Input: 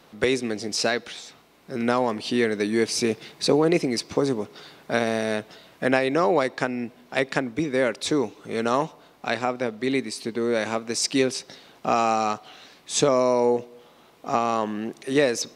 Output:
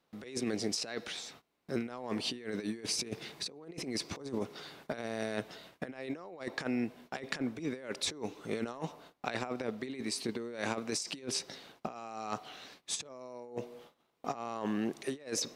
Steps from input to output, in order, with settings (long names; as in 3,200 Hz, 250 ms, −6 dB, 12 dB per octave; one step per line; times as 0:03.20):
noise gate −50 dBFS, range −20 dB
compressor whose output falls as the input rises −28 dBFS, ratio −0.5
level −8.5 dB